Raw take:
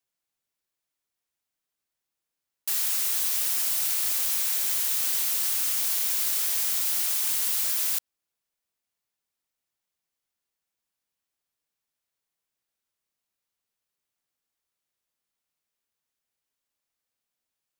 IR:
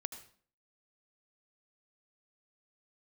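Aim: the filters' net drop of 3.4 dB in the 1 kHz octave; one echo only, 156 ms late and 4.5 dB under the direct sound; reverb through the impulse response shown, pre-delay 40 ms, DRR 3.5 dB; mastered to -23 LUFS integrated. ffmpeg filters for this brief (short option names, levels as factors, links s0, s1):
-filter_complex "[0:a]equalizer=f=1000:t=o:g=-4.5,aecho=1:1:156:0.596,asplit=2[s0][s1];[1:a]atrim=start_sample=2205,adelay=40[s2];[s1][s2]afir=irnorm=-1:irlink=0,volume=0.794[s3];[s0][s3]amix=inputs=2:normalize=0,volume=0.708"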